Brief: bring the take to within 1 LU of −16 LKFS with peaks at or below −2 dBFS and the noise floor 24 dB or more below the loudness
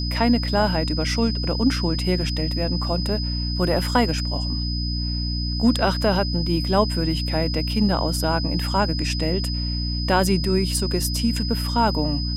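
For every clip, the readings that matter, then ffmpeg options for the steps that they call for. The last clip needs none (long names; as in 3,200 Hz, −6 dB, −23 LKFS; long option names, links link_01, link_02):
mains hum 60 Hz; hum harmonics up to 300 Hz; level of the hum −23 dBFS; interfering tone 5,000 Hz; level of the tone −29 dBFS; integrated loudness −22.0 LKFS; sample peak −4.5 dBFS; target loudness −16.0 LKFS
→ -af "bandreject=frequency=60:width_type=h:width=6,bandreject=frequency=120:width_type=h:width=6,bandreject=frequency=180:width_type=h:width=6,bandreject=frequency=240:width_type=h:width=6,bandreject=frequency=300:width_type=h:width=6"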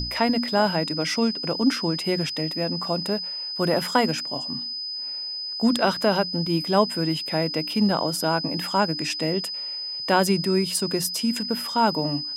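mains hum none found; interfering tone 5,000 Hz; level of the tone −29 dBFS
→ -af "bandreject=frequency=5000:width=30"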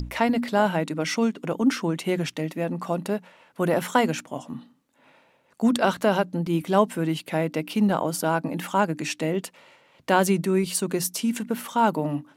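interfering tone none found; integrated loudness −25.0 LKFS; sample peak −6.0 dBFS; target loudness −16.0 LKFS
→ -af "volume=9dB,alimiter=limit=-2dB:level=0:latency=1"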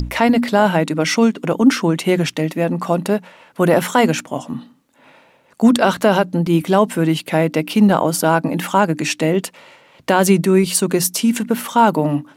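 integrated loudness −16.5 LKFS; sample peak −2.0 dBFS; background noise floor −54 dBFS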